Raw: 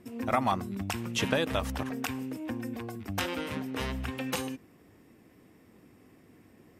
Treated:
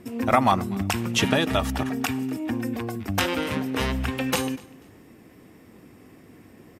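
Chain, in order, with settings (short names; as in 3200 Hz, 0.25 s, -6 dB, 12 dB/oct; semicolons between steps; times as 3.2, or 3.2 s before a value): 1.2–2.53 notch comb 520 Hz; on a send: feedback echo 0.244 s, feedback 26%, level -24 dB; on the sum: gain +8 dB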